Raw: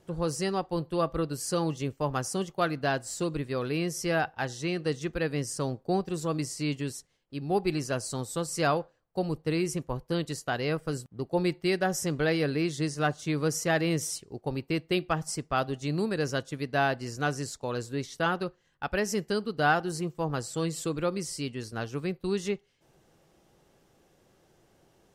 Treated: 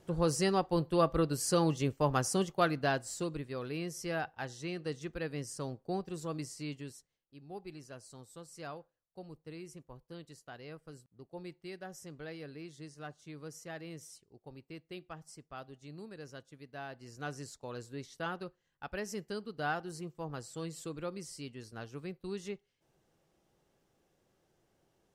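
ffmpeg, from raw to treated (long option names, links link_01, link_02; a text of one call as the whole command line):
ffmpeg -i in.wav -af "volume=8dB,afade=type=out:start_time=2.39:duration=1.07:silence=0.375837,afade=type=out:start_time=6.39:duration=1.02:silence=0.316228,afade=type=in:start_time=16.87:duration=0.49:silence=0.398107" out.wav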